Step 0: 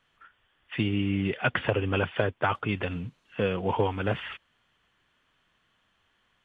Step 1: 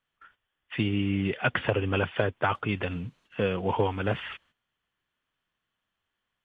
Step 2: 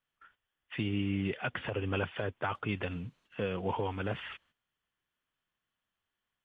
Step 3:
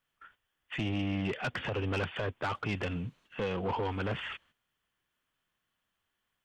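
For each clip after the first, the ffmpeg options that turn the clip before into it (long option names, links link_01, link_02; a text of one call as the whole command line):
ffmpeg -i in.wav -af "agate=range=-13dB:threshold=-59dB:ratio=16:detection=peak" out.wav
ffmpeg -i in.wav -af "alimiter=limit=-16.5dB:level=0:latency=1:release=111,volume=-5dB" out.wav
ffmpeg -i in.wav -af "asoftclip=type=tanh:threshold=-31.5dB,volume=4.5dB" out.wav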